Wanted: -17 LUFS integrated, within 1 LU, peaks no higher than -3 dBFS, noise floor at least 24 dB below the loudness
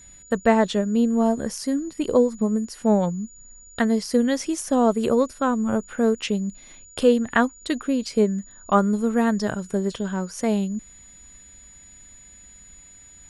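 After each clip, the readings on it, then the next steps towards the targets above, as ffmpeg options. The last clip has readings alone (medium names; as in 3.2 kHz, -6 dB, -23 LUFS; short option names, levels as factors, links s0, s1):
steady tone 6.9 kHz; tone level -46 dBFS; loudness -22.5 LUFS; peak level -4.5 dBFS; loudness target -17.0 LUFS
-> -af "bandreject=f=6900:w=30"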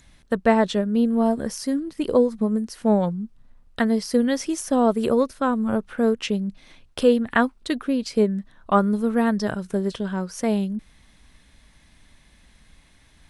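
steady tone not found; loudness -23.0 LUFS; peak level -4.5 dBFS; loudness target -17.0 LUFS
-> -af "volume=2,alimiter=limit=0.708:level=0:latency=1"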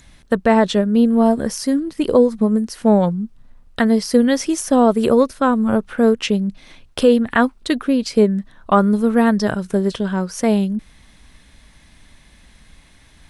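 loudness -17.0 LUFS; peak level -3.0 dBFS; noise floor -50 dBFS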